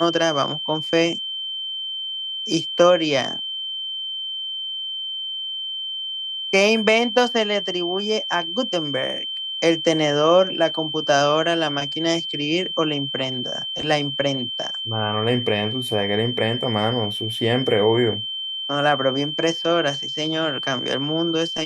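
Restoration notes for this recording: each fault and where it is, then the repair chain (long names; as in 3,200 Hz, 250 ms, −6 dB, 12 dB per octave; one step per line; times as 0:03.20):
whistle 3,100 Hz −26 dBFS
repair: notch filter 3,100 Hz, Q 30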